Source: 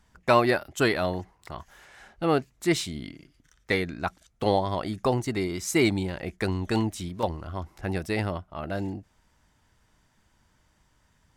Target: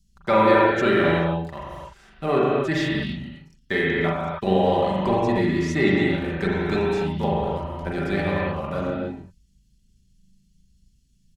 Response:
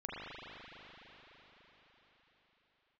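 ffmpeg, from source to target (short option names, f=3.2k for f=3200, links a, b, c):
-filter_complex "[0:a]acrossover=split=5600[a][b];[b]acompressor=threshold=-58dB:ratio=4:attack=1:release=60[c];[a][c]amix=inputs=2:normalize=0,acrossover=split=270|4100[d][e][f];[e]aeval=exprs='sgn(val(0))*max(abs(val(0))-0.00266,0)':c=same[g];[d][g][f]amix=inputs=3:normalize=0,aecho=1:1:4.7:0.48,asplit=2[h][i];[i]alimiter=limit=-16dB:level=0:latency=1:release=72,volume=-1dB[j];[h][j]amix=inputs=2:normalize=0,asetrate=40440,aresample=44100,atempo=1.09051[k];[1:a]atrim=start_sample=2205,afade=t=out:st=0.37:d=0.01,atrim=end_sample=16758[l];[k][l]afir=irnorm=-1:irlink=0"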